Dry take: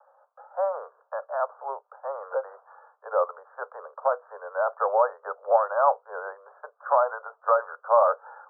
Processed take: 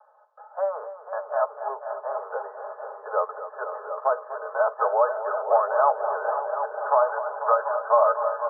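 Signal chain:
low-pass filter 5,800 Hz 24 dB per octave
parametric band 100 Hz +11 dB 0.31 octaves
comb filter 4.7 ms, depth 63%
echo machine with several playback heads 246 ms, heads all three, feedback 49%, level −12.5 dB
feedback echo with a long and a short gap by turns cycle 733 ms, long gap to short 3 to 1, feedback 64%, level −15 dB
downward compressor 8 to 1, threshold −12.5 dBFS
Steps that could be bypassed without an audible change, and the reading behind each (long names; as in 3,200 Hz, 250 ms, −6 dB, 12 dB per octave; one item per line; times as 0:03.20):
low-pass filter 5,800 Hz: nothing at its input above 1,700 Hz
parametric band 100 Hz: nothing at its input below 380 Hz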